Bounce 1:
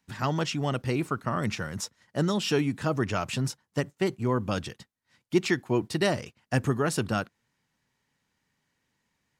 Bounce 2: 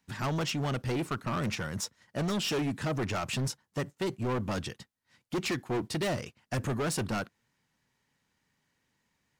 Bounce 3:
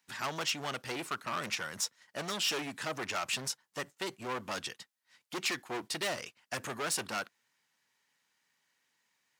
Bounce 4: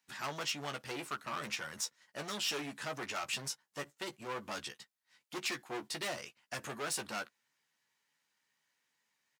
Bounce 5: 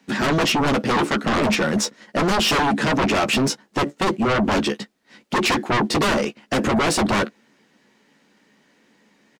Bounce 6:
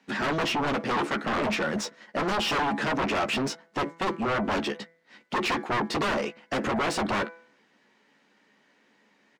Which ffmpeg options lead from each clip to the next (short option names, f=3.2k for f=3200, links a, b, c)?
-af "asoftclip=type=hard:threshold=-27.5dB"
-af "highpass=f=1.2k:p=1,volume=2.5dB"
-filter_complex "[0:a]asplit=2[a][b];[b]adelay=14,volume=-7dB[c];[a][c]amix=inputs=2:normalize=0,volume=-4.5dB"
-af "firequalizer=gain_entry='entry(130,0);entry(200,15);entry(940,-3);entry(13000,-18)':delay=0.05:min_phase=1,aeval=exprs='0.075*sin(PI/2*4.47*val(0)/0.075)':c=same,volume=7dB"
-filter_complex "[0:a]asplit=2[a][b];[b]highpass=f=720:p=1,volume=8dB,asoftclip=type=tanh:threshold=-15dB[c];[a][c]amix=inputs=2:normalize=0,lowpass=f=2.7k:p=1,volume=-6dB,bandreject=f=166.3:t=h:w=4,bandreject=f=332.6:t=h:w=4,bandreject=f=498.9:t=h:w=4,bandreject=f=665.2:t=h:w=4,bandreject=f=831.5:t=h:w=4,bandreject=f=997.8:t=h:w=4,bandreject=f=1.1641k:t=h:w=4,bandreject=f=1.3304k:t=h:w=4,bandreject=f=1.4967k:t=h:w=4,bandreject=f=1.663k:t=h:w=4,bandreject=f=1.8293k:t=h:w=4,bandreject=f=1.9956k:t=h:w=4,bandreject=f=2.1619k:t=h:w=4,bandreject=f=2.3282k:t=h:w=4,volume=-5.5dB"